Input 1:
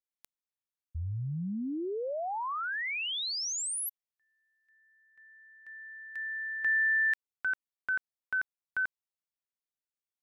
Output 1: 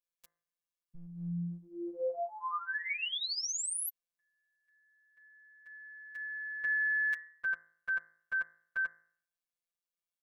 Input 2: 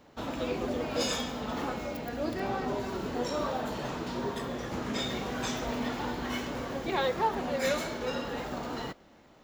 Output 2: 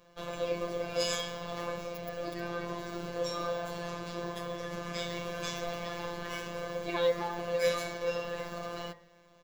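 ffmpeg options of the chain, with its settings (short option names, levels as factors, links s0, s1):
-af "aecho=1:1:1.8:0.63,afftfilt=real='hypot(re,im)*cos(PI*b)':imag='0':win_size=1024:overlap=0.75,bandreject=f=54.12:t=h:w=4,bandreject=f=108.24:t=h:w=4,bandreject=f=162.36:t=h:w=4,bandreject=f=216.48:t=h:w=4,bandreject=f=270.6:t=h:w=4,bandreject=f=324.72:t=h:w=4,bandreject=f=378.84:t=h:w=4,bandreject=f=432.96:t=h:w=4,bandreject=f=487.08:t=h:w=4,bandreject=f=541.2:t=h:w=4,bandreject=f=595.32:t=h:w=4,bandreject=f=649.44:t=h:w=4,bandreject=f=703.56:t=h:w=4,bandreject=f=757.68:t=h:w=4,bandreject=f=811.8:t=h:w=4,bandreject=f=865.92:t=h:w=4,bandreject=f=920.04:t=h:w=4,bandreject=f=974.16:t=h:w=4,bandreject=f=1028.28:t=h:w=4,bandreject=f=1082.4:t=h:w=4,bandreject=f=1136.52:t=h:w=4,bandreject=f=1190.64:t=h:w=4,bandreject=f=1244.76:t=h:w=4,bandreject=f=1298.88:t=h:w=4,bandreject=f=1353:t=h:w=4,bandreject=f=1407.12:t=h:w=4,bandreject=f=1461.24:t=h:w=4,bandreject=f=1515.36:t=h:w=4,bandreject=f=1569.48:t=h:w=4,bandreject=f=1623.6:t=h:w=4,bandreject=f=1677.72:t=h:w=4,bandreject=f=1731.84:t=h:w=4,bandreject=f=1785.96:t=h:w=4,bandreject=f=1840.08:t=h:w=4,bandreject=f=1894.2:t=h:w=4,bandreject=f=1948.32:t=h:w=4,bandreject=f=2002.44:t=h:w=4,bandreject=f=2056.56:t=h:w=4,bandreject=f=2110.68:t=h:w=4"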